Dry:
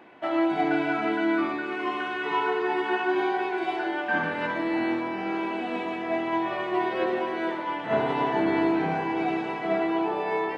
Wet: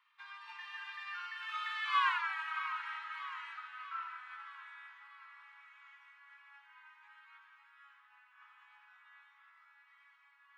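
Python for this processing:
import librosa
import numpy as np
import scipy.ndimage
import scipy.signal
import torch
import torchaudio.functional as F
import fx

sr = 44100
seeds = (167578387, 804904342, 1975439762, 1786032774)

y = fx.doppler_pass(x, sr, speed_mps=59, closest_m=8.5, pass_at_s=2.13)
y = fx.echo_feedback(y, sr, ms=633, feedback_pct=53, wet_db=-16.5)
y = fx.rider(y, sr, range_db=3, speed_s=0.5)
y = scipy.signal.sosfilt(scipy.signal.butter(12, 1000.0, 'highpass', fs=sr, output='sos'), y)
y = F.gain(torch.from_numpy(y), 3.5).numpy()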